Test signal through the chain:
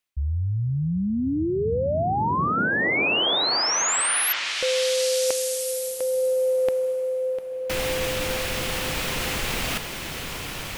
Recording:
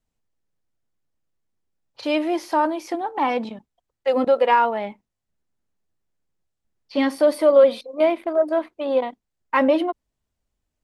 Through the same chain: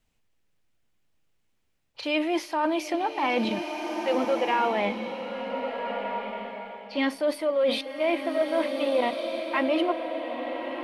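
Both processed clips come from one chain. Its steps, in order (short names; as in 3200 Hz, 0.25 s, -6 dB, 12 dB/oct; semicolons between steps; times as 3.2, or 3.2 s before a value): bell 2600 Hz +7.5 dB 1.1 oct; reverse; compressor 5:1, threshold -29 dBFS; reverse; bloom reverb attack 1.55 s, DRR 4.5 dB; gain +5 dB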